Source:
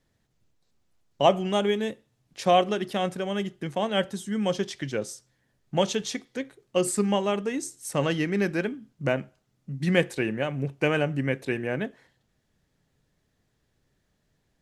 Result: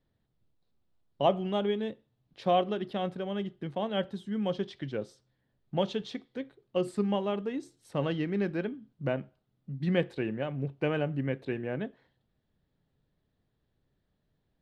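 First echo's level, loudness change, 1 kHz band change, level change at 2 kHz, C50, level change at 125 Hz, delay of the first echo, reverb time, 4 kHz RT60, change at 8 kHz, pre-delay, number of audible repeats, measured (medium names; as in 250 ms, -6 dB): no echo, -5.5 dB, -6.0 dB, -9.5 dB, no reverb, -4.0 dB, no echo, no reverb, no reverb, under -20 dB, no reverb, no echo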